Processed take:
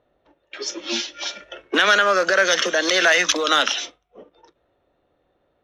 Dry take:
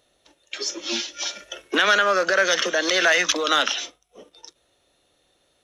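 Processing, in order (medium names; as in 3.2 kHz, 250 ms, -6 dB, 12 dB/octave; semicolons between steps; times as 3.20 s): level-controlled noise filter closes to 1.3 kHz, open at -19.5 dBFS; trim +2 dB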